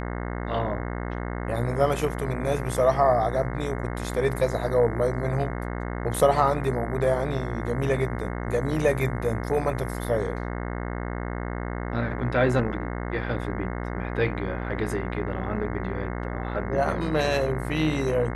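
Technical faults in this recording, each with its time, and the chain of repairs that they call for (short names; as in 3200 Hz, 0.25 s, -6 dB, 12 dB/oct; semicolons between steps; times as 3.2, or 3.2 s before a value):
buzz 60 Hz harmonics 36 -31 dBFS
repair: de-hum 60 Hz, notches 36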